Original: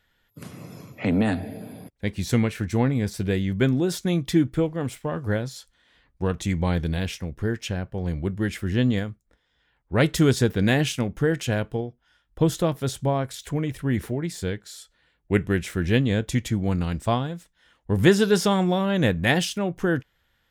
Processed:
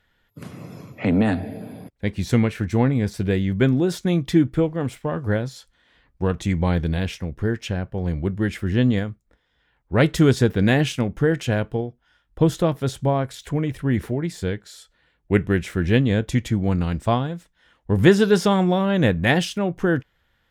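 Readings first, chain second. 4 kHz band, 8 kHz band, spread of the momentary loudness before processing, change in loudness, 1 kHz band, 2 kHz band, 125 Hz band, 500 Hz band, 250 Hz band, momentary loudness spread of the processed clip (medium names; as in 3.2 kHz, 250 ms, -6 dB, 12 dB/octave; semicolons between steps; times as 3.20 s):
0.0 dB, -2.5 dB, 11 LU, +2.5 dB, +2.5 dB, +2.0 dB, +3.0 dB, +3.0 dB, +3.0 dB, 11 LU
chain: treble shelf 4.3 kHz -7.5 dB; trim +3 dB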